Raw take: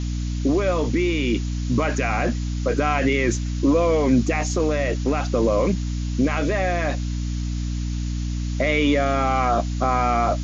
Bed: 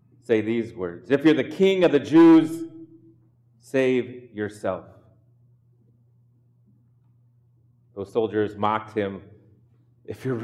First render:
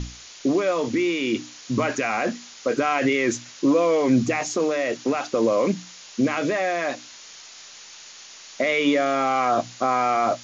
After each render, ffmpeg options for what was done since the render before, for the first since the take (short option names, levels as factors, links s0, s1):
-af "bandreject=f=60:t=h:w=6,bandreject=f=120:t=h:w=6,bandreject=f=180:t=h:w=6,bandreject=f=240:t=h:w=6,bandreject=f=300:t=h:w=6"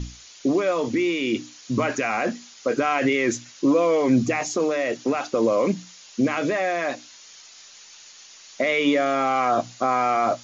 -af "afftdn=nr=6:nf=-44"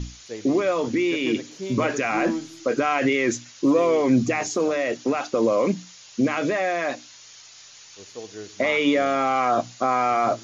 -filter_complex "[1:a]volume=0.188[s0];[0:a][s0]amix=inputs=2:normalize=0"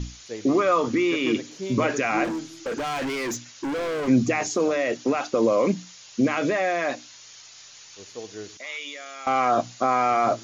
-filter_complex "[0:a]asettb=1/sr,asplit=3[s0][s1][s2];[s0]atrim=end=0.484[s3];[s1]atrim=start=0.48:end=1.37,asetpts=PTS-STARTPTS,afade=t=in:d=0.004:c=qsin,afade=t=out:st=0.886:d=0.004:c=qsin,equalizer=f=1200:t=o:w=0.33:g=11.5[s4];[s2]atrim=start=1.366[s5];[s3][s4]acrossfade=d=0.004:c1=hsin:c2=qsin[s6];[s6][s5]acrossfade=d=0.004:c1=qsin:c2=hsin,asettb=1/sr,asplit=3[s7][s8][s9];[s7]atrim=end=2.244[s10];[s8]atrim=start=2.24:end=4.08,asetpts=PTS-STARTPTS,afade=t=in:d=0.004:c=qsin,afade=t=out:st=1.836:d=0.004:c=qsin,volume=20,asoftclip=hard,volume=0.0501[s11];[s9]atrim=start=4.076[s12];[s10][s11]acrossfade=d=0.004:c1=hsin:c2=qsin[s13];[s13][s12]acrossfade=d=0.004:c1=qsin:c2=hsin,asettb=1/sr,asplit=3[s14][s15][s16];[s14]atrim=end=8.574[s17];[s15]atrim=start=8.57:end=9.27,asetpts=PTS-STARTPTS,afade=t=in:d=0.004:c=qsin,afade=t=out:st=0.696:d=0.004:c=qsin,aderivative[s18];[s16]atrim=start=9.266[s19];[s17][s18]acrossfade=d=0.004:c1=hsin:c2=qsin[s20];[s20][s19]acrossfade=d=0.004:c1=qsin:c2=hsin"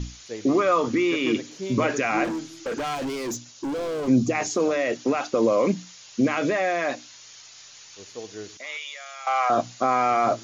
-filter_complex "[0:a]asettb=1/sr,asplit=3[s0][s1][s2];[s0]atrim=end=2.954[s3];[s1]atrim=start=2.95:end=4.35,asetpts=PTS-STARTPTS,afade=t=in:d=0.004:c=qsin,afade=t=out:st=1.396:d=0.004:c=qsin,equalizer=f=1900:w=1.1:g=-9[s4];[s2]atrim=start=4.346[s5];[s3][s4]acrossfade=d=0.004:c1=hsin:c2=qsin[s6];[s6][s5]acrossfade=d=0.004:c1=qsin:c2=hsin,asettb=1/sr,asplit=3[s7][s8][s9];[s7]atrim=end=8.774[s10];[s8]atrim=start=8.77:end=9.5,asetpts=PTS-STARTPTS,afade=t=in:d=0.004:c=qsin,afade=t=out:st=0.726:d=0.004:c=qsin,highpass=f=630:w=0.5412,highpass=f=630:w=1.3066[s11];[s9]atrim=start=9.496[s12];[s10][s11]acrossfade=d=0.004:c1=hsin:c2=qsin[s13];[s13][s12]acrossfade=d=0.004:c1=qsin:c2=hsin"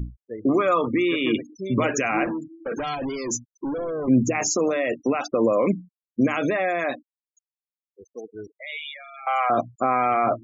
-af "afftfilt=real='re*gte(hypot(re,im),0.0251)':imag='im*gte(hypot(re,im),0.0251)':win_size=1024:overlap=0.75,bass=f=250:g=2,treble=f=4000:g=8"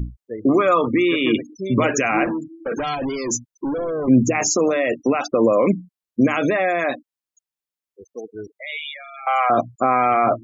-af "volume=1.58"